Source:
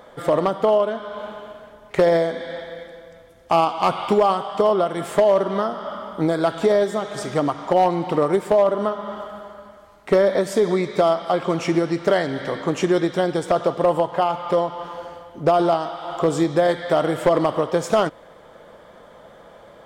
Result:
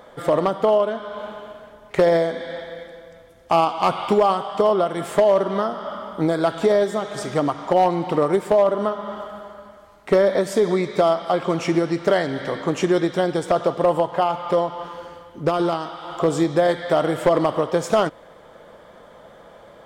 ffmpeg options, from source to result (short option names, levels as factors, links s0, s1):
-filter_complex "[0:a]asettb=1/sr,asplit=3[s0][s1][s2];[s0]atrim=end=14.884[s3];[s1]atrim=start=14.88:end=16.2,asetpts=PTS-STARTPTS,afade=t=in:d=0.004:c=qsin,afade=t=out:st=1.316:d=0.004:c=qsin,equalizer=f=690:t=o:w=0.46:g=-8[s4];[s2]atrim=start=16.196[s5];[s3][s4]acrossfade=d=0.004:c1=hsin:c2=qsin[s6];[s6][s5]acrossfade=d=0.004:c1=qsin:c2=hsin"